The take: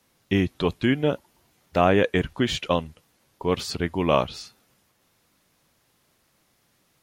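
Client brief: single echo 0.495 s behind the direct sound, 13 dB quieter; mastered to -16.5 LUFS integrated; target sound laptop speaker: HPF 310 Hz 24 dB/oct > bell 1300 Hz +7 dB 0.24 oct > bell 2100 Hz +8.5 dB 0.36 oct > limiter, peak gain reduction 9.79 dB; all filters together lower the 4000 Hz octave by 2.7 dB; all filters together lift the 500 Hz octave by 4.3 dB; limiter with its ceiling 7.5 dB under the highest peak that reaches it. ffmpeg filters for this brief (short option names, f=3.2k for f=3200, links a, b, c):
-af "equalizer=f=500:t=o:g=5.5,equalizer=f=4k:t=o:g=-5,alimiter=limit=-9.5dB:level=0:latency=1,highpass=f=310:w=0.5412,highpass=f=310:w=1.3066,equalizer=f=1.3k:t=o:w=0.24:g=7,equalizer=f=2.1k:t=o:w=0.36:g=8.5,aecho=1:1:495:0.224,volume=14dB,alimiter=limit=-4.5dB:level=0:latency=1"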